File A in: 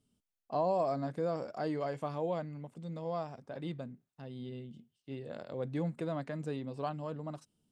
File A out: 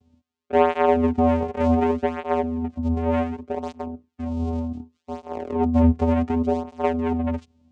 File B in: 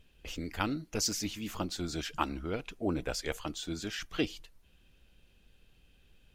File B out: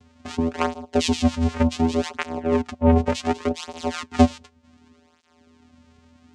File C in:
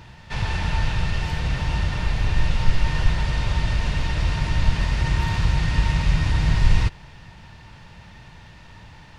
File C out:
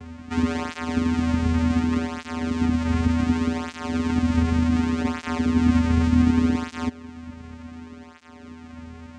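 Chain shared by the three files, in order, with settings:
in parallel at +2.5 dB: brickwall limiter −16 dBFS
on the sum: channel vocoder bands 4, square 82.1 Hz
through-zero flanger with one copy inverted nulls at 0.67 Hz, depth 3.3 ms
loudness normalisation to −23 LKFS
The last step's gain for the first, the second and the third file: +12.0, +11.5, +4.0 decibels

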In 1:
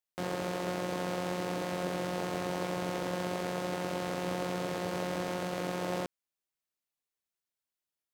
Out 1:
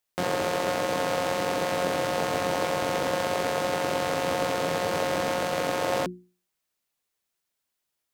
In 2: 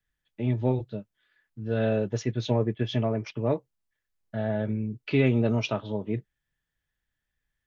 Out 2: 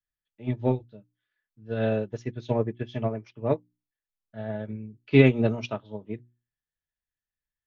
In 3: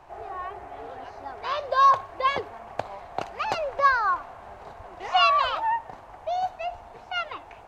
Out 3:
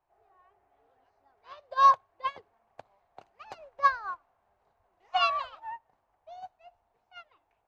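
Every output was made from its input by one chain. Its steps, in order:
mains-hum notches 60/120/180/240/300/360 Hz
expander for the loud parts 2.5 to 1, over −33 dBFS
loudness normalisation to −27 LKFS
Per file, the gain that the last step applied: +9.5, +7.5, −0.5 decibels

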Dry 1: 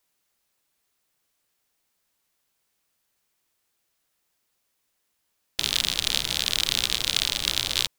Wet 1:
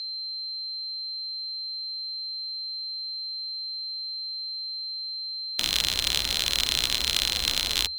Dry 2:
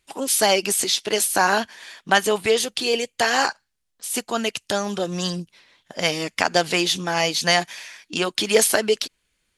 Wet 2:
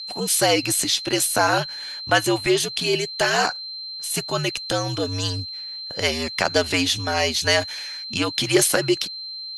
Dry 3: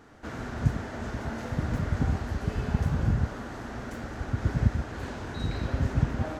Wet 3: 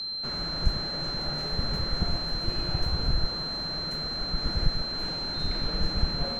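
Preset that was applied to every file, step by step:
steady tone 4,200 Hz −31 dBFS
frequency shifter −77 Hz
soft clipping −4 dBFS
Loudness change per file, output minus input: −3.5, −0.5, +1.5 LU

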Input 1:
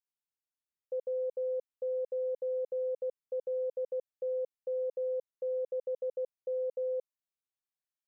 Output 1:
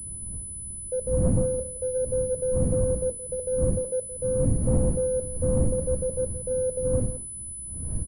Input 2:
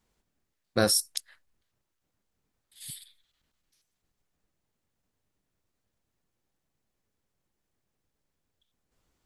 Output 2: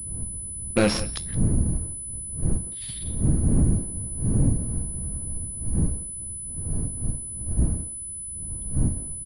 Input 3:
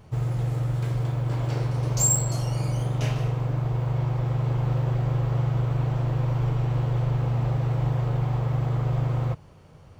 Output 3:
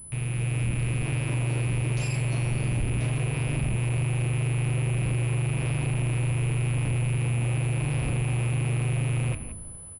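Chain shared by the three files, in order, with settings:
loose part that buzzes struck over −35 dBFS, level −20 dBFS
wind on the microphone 110 Hz −35 dBFS
flanger 0.44 Hz, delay 6.8 ms, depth 6.2 ms, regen −76%
automatic gain control gain up to 7.5 dB
dynamic equaliser 260 Hz, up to +7 dB, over −39 dBFS, Q 0.98
soft clipping −15.5 dBFS
low-shelf EQ 200 Hz +4.5 dB
far-end echo of a speakerphone 170 ms, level −14 dB
downward compressor, threshold −18 dBFS
switching amplifier with a slow clock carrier 10,000 Hz
loudness normalisation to −27 LKFS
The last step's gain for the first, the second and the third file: +1.0, +3.5, −5.0 decibels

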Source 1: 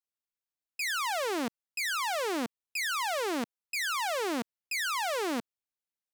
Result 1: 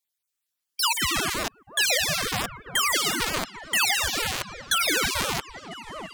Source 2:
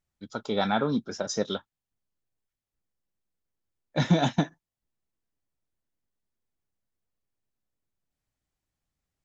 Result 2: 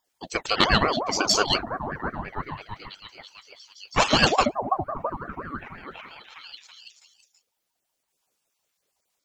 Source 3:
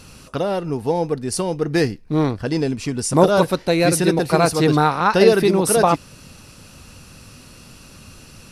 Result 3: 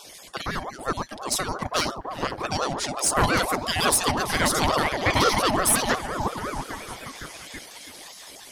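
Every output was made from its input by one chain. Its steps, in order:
time-frequency cells dropped at random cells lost 35%
tilt shelving filter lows −7 dB, about 1,300 Hz
tube saturation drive 14 dB, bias 0.3
on a send: echo through a band-pass that steps 329 ms, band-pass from 160 Hz, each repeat 0.7 octaves, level −1 dB
on the sum: ring modulator whose carrier an LFO sweeps 680 Hz, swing 40%, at 5.7 Hz
loudness normalisation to −24 LKFS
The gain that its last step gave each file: +10.5, +13.0, +3.0 decibels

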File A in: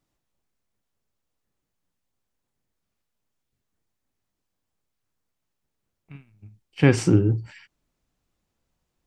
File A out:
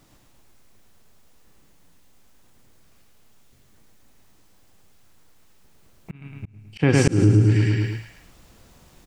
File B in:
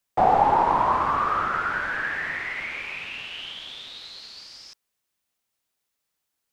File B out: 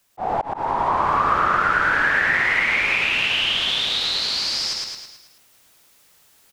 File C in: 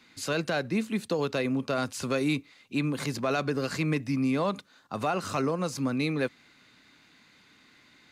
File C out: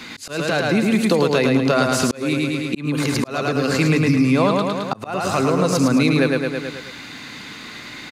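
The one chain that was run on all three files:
on a send: repeating echo 108 ms, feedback 49%, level −4 dB
on the sum: speech leveller within 5 dB 2 s
volume swells 796 ms
downward compressor 2.5 to 1, threshold −40 dBFS
loudness normalisation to −19 LKFS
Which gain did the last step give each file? +23.0, +17.5, +21.0 decibels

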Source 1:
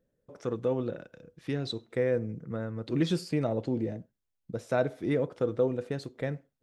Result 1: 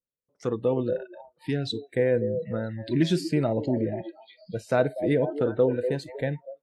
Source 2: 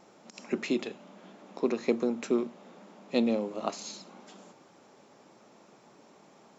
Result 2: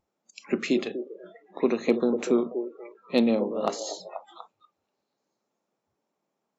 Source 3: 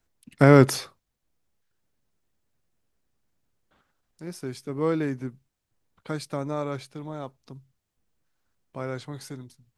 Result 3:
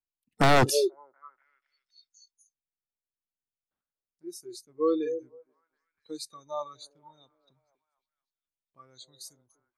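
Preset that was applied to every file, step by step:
echo through a band-pass that steps 242 ms, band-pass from 460 Hz, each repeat 0.7 octaves, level −6 dB
noise reduction from a noise print of the clip's start 29 dB
wave folding −13.5 dBFS
loudness normalisation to −27 LKFS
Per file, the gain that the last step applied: +4.5, +4.5, +1.0 decibels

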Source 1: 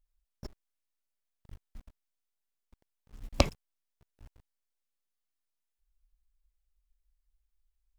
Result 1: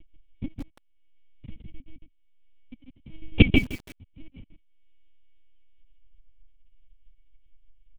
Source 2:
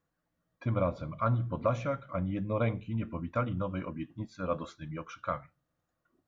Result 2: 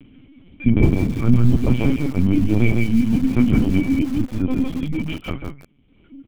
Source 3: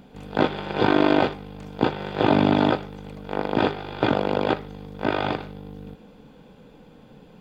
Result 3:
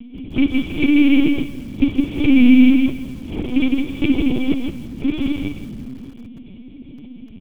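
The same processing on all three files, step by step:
loose part that buzzes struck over −21 dBFS, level −10 dBFS
parametric band 350 Hz −7 dB 2.7 octaves
in parallel at −2.5 dB: upward compression, threshold −35 dBFS
on the sum: formant resonators in series i
on a send: single-tap delay 152 ms −3.5 dB
on the sum: linear-prediction vocoder at 8 kHz pitch kept
feedback echo at a low word length 166 ms, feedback 35%, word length 8 bits, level −15 dB
normalise the peak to −1.5 dBFS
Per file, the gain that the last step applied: +19.0, +24.0, +14.0 decibels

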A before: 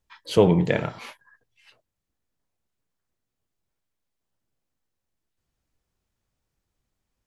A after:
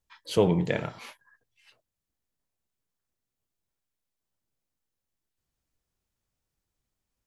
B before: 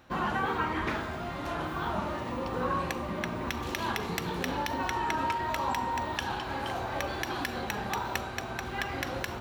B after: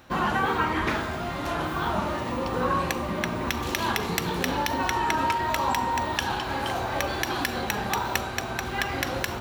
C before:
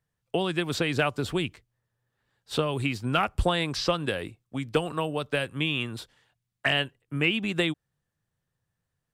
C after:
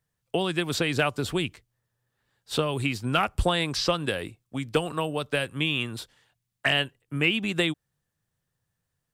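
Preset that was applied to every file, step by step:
high-shelf EQ 4,700 Hz +5 dB
loudness normalisation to −27 LKFS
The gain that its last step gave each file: −5.0, +5.0, +0.5 decibels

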